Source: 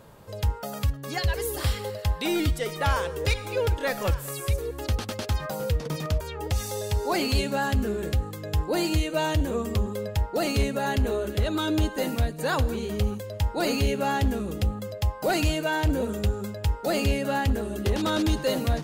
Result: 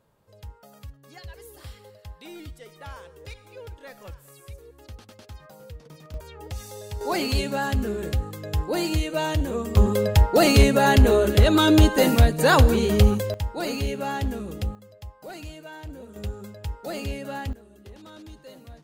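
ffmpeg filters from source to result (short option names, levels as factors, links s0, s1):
-af "asetnsamples=n=441:p=0,asendcmd='6.14 volume volume -8dB;7.01 volume volume 0dB;9.77 volume volume 9dB;13.34 volume volume -3dB;14.75 volume volume -15dB;16.16 volume volume -7dB;17.53 volume volume -20dB',volume=0.158"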